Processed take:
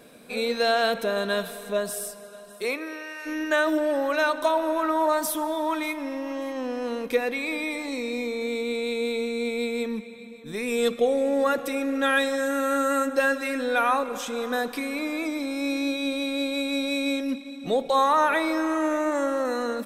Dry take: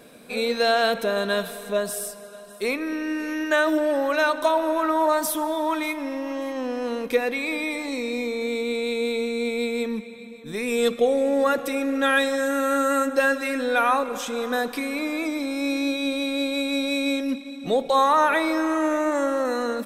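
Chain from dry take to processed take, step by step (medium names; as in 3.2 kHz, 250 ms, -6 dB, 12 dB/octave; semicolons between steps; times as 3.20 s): 2.62–3.25 s: high-pass 250 Hz -> 660 Hz 24 dB/octave; trim -2 dB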